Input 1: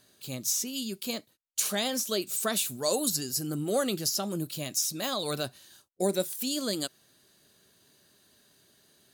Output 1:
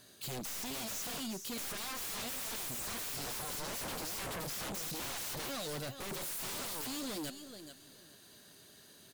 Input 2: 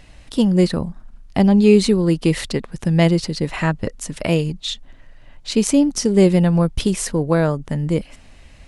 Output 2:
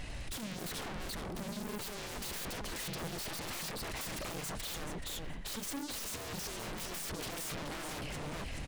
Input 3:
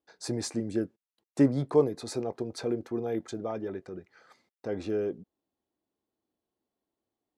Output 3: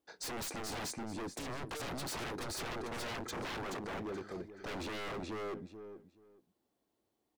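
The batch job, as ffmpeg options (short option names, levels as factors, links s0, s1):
-af "aeval=exprs='(tanh(31.6*val(0)+0.2)-tanh(0.2))/31.6':c=same,aecho=1:1:428|856|1284:0.562|0.107|0.0203,aeval=exprs='0.0106*(abs(mod(val(0)/0.0106+3,4)-2)-1)':c=same,volume=1.58"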